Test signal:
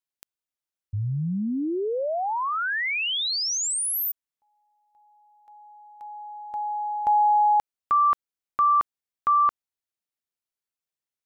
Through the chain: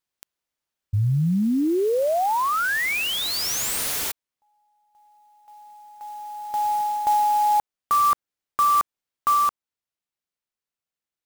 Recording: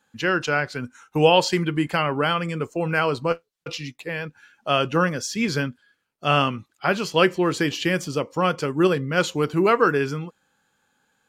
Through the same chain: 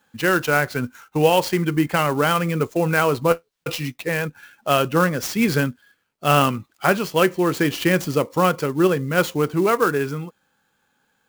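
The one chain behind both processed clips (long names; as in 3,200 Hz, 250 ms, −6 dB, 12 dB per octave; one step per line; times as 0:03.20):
dynamic equaliser 3,600 Hz, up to −4 dB, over −41 dBFS, Q 0.96
speech leveller within 4 dB 0.5 s
converter with an unsteady clock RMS 0.023 ms
level +3 dB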